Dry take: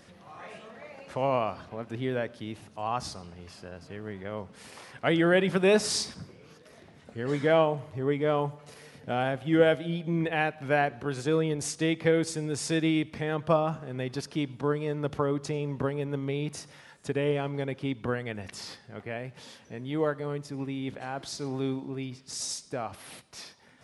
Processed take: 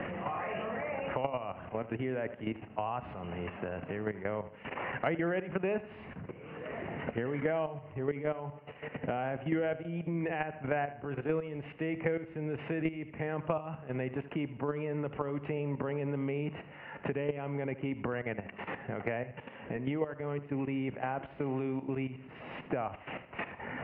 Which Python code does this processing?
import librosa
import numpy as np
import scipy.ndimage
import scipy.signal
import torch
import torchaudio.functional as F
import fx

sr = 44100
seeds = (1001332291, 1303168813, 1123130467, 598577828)

y = scipy.signal.sosfilt(scipy.signal.cheby1(6, 3, 2900.0, 'lowpass', fs=sr, output='sos'), x)
y = fx.level_steps(y, sr, step_db=13)
y = fx.echo_feedback(y, sr, ms=77, feedback_pct=33, wet_db=-16)
y = fx.band_squash(y, sr, depth_pct=100)
y = y * 10.0 ** (2.5 / 20.0)